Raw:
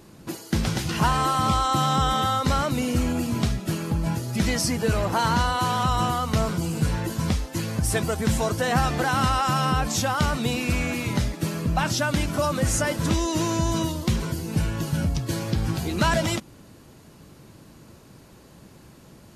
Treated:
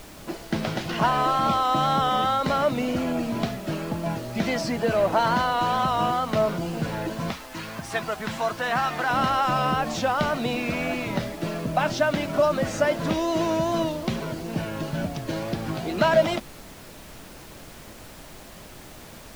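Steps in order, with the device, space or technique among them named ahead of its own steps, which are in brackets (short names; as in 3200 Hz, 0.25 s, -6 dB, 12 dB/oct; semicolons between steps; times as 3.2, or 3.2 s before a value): horn gramophone (BPF 180–3800 Hz; bell 640 Hz +9 dB 0.35 oct; wow and flutter; pink noise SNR 19 dB); 7.3–9.1 resonant low shelf 790 Hz -6.5 dB, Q 1.5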